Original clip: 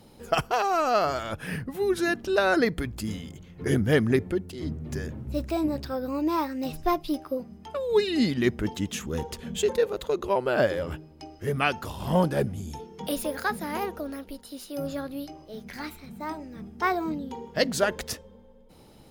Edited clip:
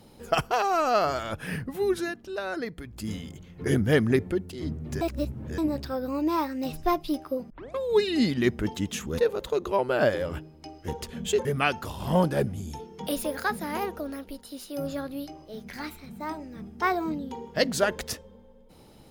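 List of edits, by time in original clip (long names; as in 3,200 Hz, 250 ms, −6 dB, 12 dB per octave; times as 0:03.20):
0:01.89–0:03.13: duck −10 dB, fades 0.25 s
0:05.01–0:05.58: reverse
0:07.50: tape start 0.28 s
0:09.18–0:09.75: move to 0:11.45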